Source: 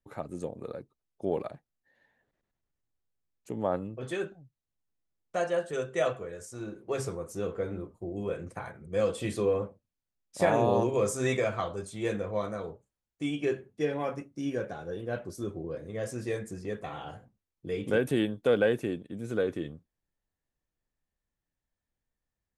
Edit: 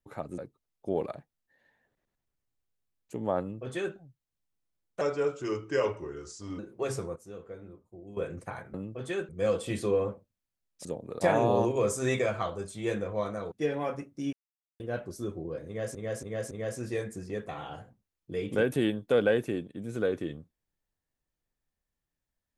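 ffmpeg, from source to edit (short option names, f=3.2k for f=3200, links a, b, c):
-filter_complex "[0:a]asplit=16[a][b][c][d][e][f][g][h][i][j][k][l][m][n][o][p];[a]atrim=end=0.382[q];[b]atrim=start=0.738:end=5.374[r];[c]atrim=start=5.37:end=6.68,asetpts=PTS-STARTPTS,asetrate=36603,aresample=44100[s];[d]atrim=start=6.676:end=7.252[t];[e]atrim=start=7.248:end=8.262,asetpts=PTS-STARTPTS,volume=-11dB[u];[f]atrim=start=8.258:end=8.832[v];[g]atrim=start=3.758:end=4.312[w];[h]atrim=start=8.828:end=10.392[x];[i]atrim=start=0.378:end=0.742[y];[j]atrim=start=10.388:end=12.702[z];[k]atrim=start=13.708:end=14.52,asetpts=PTS-STARTPTS,afade=t=out:st=0.808:d=0.004:c=hsin[aa];[l]atrim=start=14.52:end=14.99,asetpts=PTS-STARTPTS,volume=0[ab];[m]atrim=start=14.99:end=16.142,asetpts=PTS-STARTPTS,afade=t=in:d=0.004:c=hsin[ac];[n]atrim=start=15.858:end=16.142[ad];[o]atrim=start=15.858:end=16.142[ae];[p]atrim=start=15.858[af];[q][r]acrossfade=d=0.004:c1=hsin:c2=hsin[ag];[ag][s]acrossfade=d=0.004:c1=hsin:c2=hsin[ah];[ah][t]acrossfade=d=0.004:c1=hsin:c2=hsin[ai];[ai][u]acrossfade=d=0.004:c1=hsin:c2=hsin[aj];[aj][v]acrossfade=d=0.004:c1=hsin:c2=hsin[ak];[ak][w]acrossfade=d=0.004:c1=hsin:c2=hsin[al];[al][x]acrossfade=d=0.004:c1=hsin:c2=hsin[am];[am][y]acrossfade=d=0.004:c1=hsin:c2=hsin[an];[an][z]acrossfade=d=0.004:c1=hsin:c2=hsin[ao];[aa][ab][ac]concat=n=3:v=0:a=1[ap];[ao][ap]acrossfade=d=0.004:c1=hsin:c2=hsin[aq];[aq][ad]acrossfade=d=0.004:c1=hsin:c2=hsin[ar];[ar][ae]acrossfade=d=0.004:c1=hsin:c2=hsin[as];[as][af]acrossfade=d=0.004:c1=hsin:c2=hsin"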